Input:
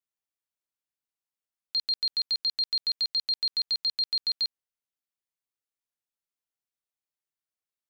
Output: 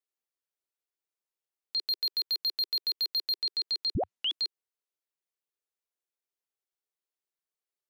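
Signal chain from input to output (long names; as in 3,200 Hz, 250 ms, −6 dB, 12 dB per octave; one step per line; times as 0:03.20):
low shelf with overshoot 280 Hz −10.5 dB, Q 3
0:01.86–0:03.39: leveller curve on the samples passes 1
0:03.95: tape start 0.44 s
level −3 dB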